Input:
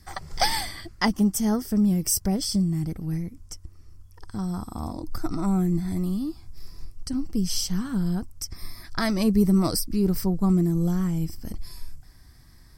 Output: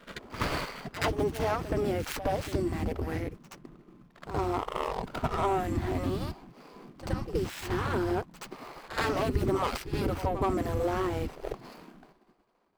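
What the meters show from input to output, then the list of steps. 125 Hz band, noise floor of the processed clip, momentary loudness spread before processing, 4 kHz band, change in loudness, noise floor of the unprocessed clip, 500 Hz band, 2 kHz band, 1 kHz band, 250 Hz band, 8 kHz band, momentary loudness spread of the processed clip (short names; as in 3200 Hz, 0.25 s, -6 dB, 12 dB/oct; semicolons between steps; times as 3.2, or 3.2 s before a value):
-7.0 dB, -62 dBFS, 16 LU, -9.0 dB, -6.0 dB, -50 dBFS, +2.5 dB, -0.5 dB, +2.0 dB, -11.0 dB, -15.5 dB, 15 LU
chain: median filter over 25 samples; expander -41 dBFS; HPF 82 Hz 12 dB/oct; spectral gate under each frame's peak -15 dB weak; tone controls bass +6 dB, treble -9 dB; AGC gain up to 7.5 dB; in parallel at -1 dB: limiter -26 dBFS, peak gain reduction 11 dB; on the sum: compressor 2:1, threshold -29 dBFS, peak gain reduction 6.5 dB; on a send: reverse echo 74 ms -11.5 dB; on the sum: gain +1.5 dB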